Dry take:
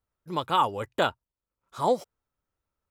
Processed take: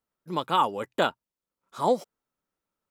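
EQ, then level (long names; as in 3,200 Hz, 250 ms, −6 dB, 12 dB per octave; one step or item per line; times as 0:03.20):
low shelf with overshoot 130 Hz −10.5 dB, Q 1.5
0.0 dB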